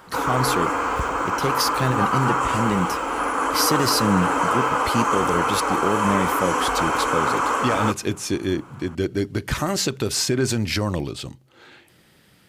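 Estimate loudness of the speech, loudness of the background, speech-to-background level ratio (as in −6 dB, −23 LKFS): −25.0 LKFS, −22.0 LKFS, −3.0 dB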